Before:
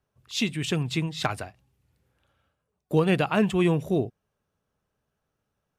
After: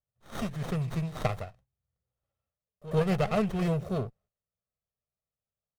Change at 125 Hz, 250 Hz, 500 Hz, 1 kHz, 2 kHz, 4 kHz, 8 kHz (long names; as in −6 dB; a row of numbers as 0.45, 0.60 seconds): −2.5, −6.0, −4.5, −4.0, −9.0, −12.5, −11.0 decibels